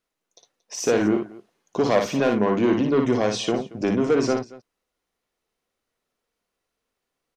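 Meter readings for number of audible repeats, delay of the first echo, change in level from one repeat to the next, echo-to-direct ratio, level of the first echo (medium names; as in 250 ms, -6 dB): 2, 57 ms, no regular repeats, -4.0 dB, -4.0 dB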